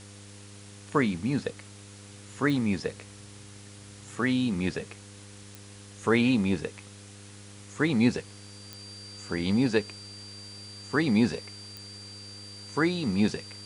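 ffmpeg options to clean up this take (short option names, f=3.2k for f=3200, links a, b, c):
-af "adeclick=t=4,bandreject=f=101:t=h:w=4,bandreject=f=202:t=h:w=4,bandreject=f=303:t=h:w=4,bandreject=f=404:t=h:w=4,bandreject=f=505:t=h:w=4,bandreject=f=4.7k:w=30,afftdn=nr=25:nf=-47"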